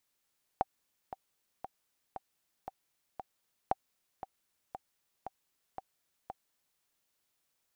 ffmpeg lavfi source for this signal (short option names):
-f lavfi -i "aevalsrc='pow(10,(-14.5-13*gte(mod(t,6*60/116),60/116))/20)*sin(2*PI*769*mod(t,60/116))*exp(-6.91*mod(t,60/116)/0.03)':d=6.2:s=44100"